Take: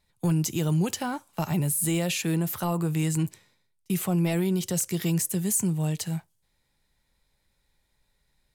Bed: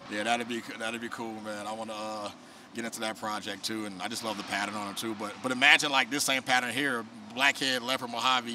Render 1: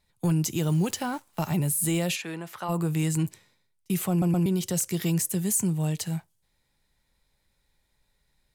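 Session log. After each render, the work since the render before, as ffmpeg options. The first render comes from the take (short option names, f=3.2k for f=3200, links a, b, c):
-filter_complex "[0:a]asettb=1/sr,asplit=3[a][b][c];[a]atrim=end=0.664[d];[b]atrim=start=0.66:end=1.56,asetpts=PTS-STARTPTS,afade=t=in:d=0.004:c=qsin,afade=t=out:st=0.896:d=0.004:c=qsin,acrusher=bits=9:dc=4:mix=0:aa=0.000001[e];[c]atrim=start=1.556[f];[d][e]acrossfade=d=0.004:c1=hsin:c2=qsin[g];[g][f]acrossfade=d=0.004:c1=qsin:c2=hsin,asplit=3[h][i][j];[h]afade=t=out:st=2.15:d=0.02[k];[i]bandpass=f=1.4k:t=q:w=0.57,afade=t=in:st=2.15:d=0.02,afade=t=out:st=2.68:d=0.02[l];[j]afade=t=in:st=2.68:d=0.02[m];[k][l][m]amix=inputs=3:normalize=0,asplit=4[n][o][p][q];[n]atrim=end=4.222[r];[o]atrim=start=4.098:end=4.222[s];[p]atrim=start=4.098:end=4.222[t];[q]atrim=start=4.458[u];[r][s]acrossfade=d=0.004:c1=hsin:c2=hsin[v];[v][t]acrossfade=d=0.004:c1=hsin:c2=hsin[w];[w][u]acrossfade=d=0.004:c1=hsin:c2=hsin"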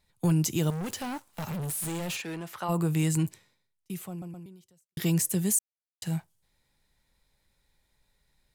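-filter_complex "[0:a]asettb=1/sr,asplit=3[a][b][c];[a]atrim=end=0.704[d];[b]atrim=start=0.7:end=2.61,asetpts=PTS-STARTPTS,afade=t=in:d=0.004:c=qsin,afade=t=out:st=1.906:d=0.004:c=qsin,asoftclip=type=hard:threshold=-31.5dB[e];[c]atrim=start=2.606[f];[d][e]acrossfade=d=0.004:c1=hsin:c2=qsin[g];[g][f]acrossfade=d=0.004:c1=qsin:c2=hsin,asplit=4[h][i][j][k];[h]atrim=end=4.97,asetpts=PTS-STARTPTS,afade=t=out:st=3.15:d=1.82:c=qua[l];[i]atrim=start=4.97:end=5.59,asetpts=PTS-STARTPTS,afade=t=in:d=0.004:c=hsin,afade=t=out:st=0.616:d=0.004:c=hsin[m];[j]atrim=start=5.59:end=6.02,asetpts=PTS-STARTPTS,volume=0[n];[k]atrim=start=6.02,asetpts=PTS-STARTPTS,afade=t=in:d=0.004:c=hsin[o];[l][m][n][o]concat=n=4:v=0:a=1"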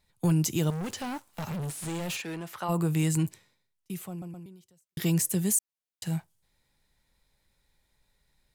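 -filter_complex "[0:a]asettb=1/sr,asplit=3[a][b][c];[a]atrim=end=0.644[d];[b]atrim=start=0.64:end=2.05,asetpts=PTS-STARTPTS,afade=t=in:d=0.004:c=qsin,afade=t=out:st=1.406:d=0.004:c=qsin,acrossover=split=8500[e][f];[f]acompressor=threshold=-50dB:ratio=4:attack=1:release=60[g];[e][g]amix=inputs=2:normalize=0[h];[c]atrim=start=2.046[i];[d][h]acrossfade=d=0.004:c1=hsin:c2=qsin[j];[j][i]acrossfade=d=0.004:c1=qsin:c2=hsin"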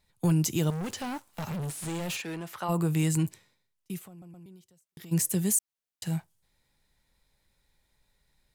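-filter_complex "[0:a]asplit=3[a][b][c];[a]afade=t=out:st=3.98:d=0.02[d];[b]acompressor=threshold=-45dB:ratio=6:attack=3.2:release=140:knee=1:detection=peak,afade=t=in:st=3.98:d=0.02,afade=t=out:st=5.11:d=0.02[e];[c]afade=t=in:st=5.11:d=0.02[f];[d][e][f]amix=inputs=3:normalize=0"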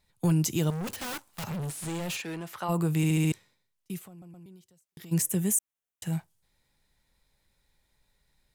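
-filter_complex "[0:a]asettb=1/sr,asplit=3[a][b][c];[a]atrim=end=0.874[d];[b]atrim=start=0.87:end=1.44,asetpts=PTS-STARTPTS,afade=t=in:d=0.004:c=qsin,afade=t=out:st=0.566:d=0.004:c=qsin,aeval=exprs='(mod(42.2*val(0)+1,2)-1)/42.2':c=same[e];[c]atrim=start=1.436[f];[d][e]acrossfade=d=0.004:c1=hsin:c2=qsin[g];[g][f]acrossfade=d=0.004:c1=qsin:c2=hsin,asettb=1/sr,asplit=3[h][i][j];[h]atrim=end=5.224[k];[i]atrim=start=5.22:end=6.13,asetpts=PTS-STARTPTS,afade=t=in:d=0.004:c=qsin,afade=t=out:st=0.906:d=0.004:c=qsin,equalizer=f=4.5k:t=o:w=0.39:g=-12.5[l];[j]atrim=start=6.126[m];[k][l]acrossfade=d=0.004:c1=hsin:c2=qsin[n];[n][m]acrossfade=d=0.004:c1=qsin:c2=hsin,asplit=6[o][p][q][r][s][t];[o]atrim=end=3.042[u];[p]atrim=start=2.968:end=3.042[v];[q]atrim=start=2.968:end=3.042[w];[r]atrim=start=2.968:end=3.042[x];[s]atrim=start=2.968:end=3.042[y];[t]atrim=start=3.318[z];[u][v]acrossfade=d=0.004:c1=hsin:c2=hsin[aa];[aa][w]acrossfade=d=0.004:c1=hsin:c2=hsin[ab];[ab][x]acrossfade=d=0.004:c1=hsin:c2=hsin[ac];[ac][y]acrossfade=d=0.004:c1=hsin:c2=hsin[ad];[ad][z]acrossfade=d=0.004:c1=hsin:c2=hsin"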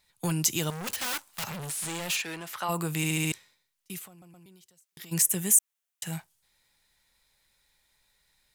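-af "tiltshelf=f=690:g=-6.5"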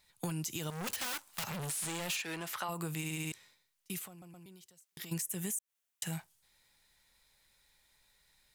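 -af "alimiter=limit=-20dB:level=0:latency=1:release=136,acompressor=threshold=-35dB:ratio=4"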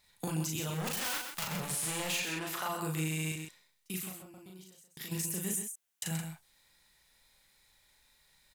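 -filter_complex "[0:a]asplit=2[a][b];[b]adelay=38,volume=-2dB[c];[a][c]amix=inputs=2:normalize=0,aecho=1:1:129:0.447"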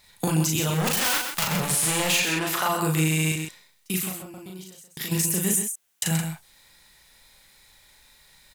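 -af "volume=11.5dB"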